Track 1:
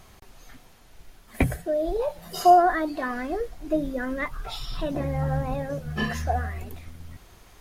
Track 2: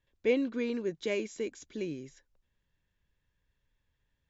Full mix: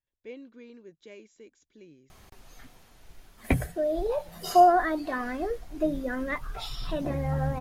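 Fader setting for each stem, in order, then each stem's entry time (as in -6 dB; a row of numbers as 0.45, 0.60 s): -2.0, -15.5 dB; 2.10, 0.00 s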